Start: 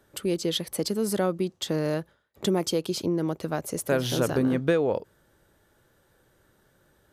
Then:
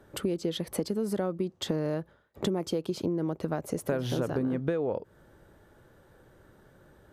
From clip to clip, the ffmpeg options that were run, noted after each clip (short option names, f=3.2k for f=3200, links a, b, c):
-af "highshelf=f=2.2k:g=-11.5,acompressor=threshold=-35dB:ratio=5,volume=7.5dB"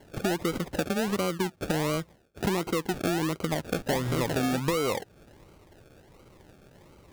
-filter_complex "[0:a]asplit=2[a][b];[b]volume=31.5dB,asoftclip=hard,volume=-31.5dB,volume=-6dB[c];[a][c]amix=inputs=2:normalize=0,acrusher=samples=35:mix=1:aa=0.000001:lfo=1:lforange=21:lforate=1.4"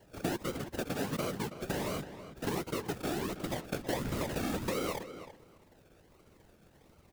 -filter_complex "[0:a]afftfilt=real='hypot(re,im)*cos(2*PI*random(0))':imag='hypot(re,im)*sin(2*PI*random(1))':win_size=512:overlap=0.75,acrusher=bits=3:mode=log:mix=0:aa=0.000001,asplit=2[a][b];[b]adelay=325,lowpass=f=3.4k:p=1,volume=-11.5dB,asplit=2[c][d];[d]adelay=325,lowpass=f=3.4k:p=1,volume=0.15[e];[a][c][e]amix=inputs=3:normalize=0,volume=-1.5dB"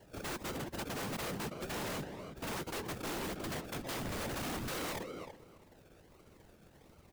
-af "aeval=exprs='0.0188*(abs(mod(val(0)/0.0188+3,4)-2)-1)':c=same,volume=1dB"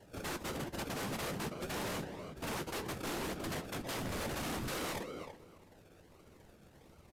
-af "flanger=delay=9.8:depth=5.9:regen=-60:speed=0.52:shape=triangular,aresample=32000,aresample=44100,volume=4.5dB"